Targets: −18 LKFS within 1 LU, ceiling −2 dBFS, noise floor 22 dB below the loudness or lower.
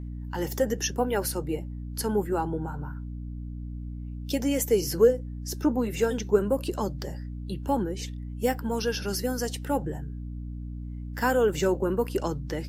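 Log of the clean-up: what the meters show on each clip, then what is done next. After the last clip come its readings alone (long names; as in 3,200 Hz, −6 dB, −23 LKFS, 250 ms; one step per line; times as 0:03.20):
mains hum 60 Hz; hum harmonics up to 300 Hz; level of the hum −33 dBFS; integrated loudness −28.5 LKFS; sample peak −8.5 dBFS; target loudness −18.0 LKFS
→ mains-hum notches 60/120/180/240/300 Hz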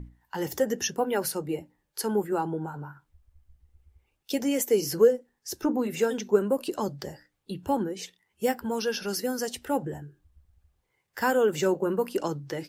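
mains hum none found; integrated loudness −28.0 LKFS; sample peak −9.0 dBFS; target loudness −18.0 LKFS
→ level +10 dB
brickwall limiter −2 dBFS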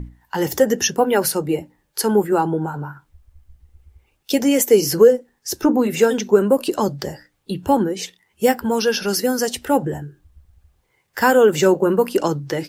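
integrated loudness −18.5 LKFS; sample peak −2.0 dBFS; background noise floor −67 dBFS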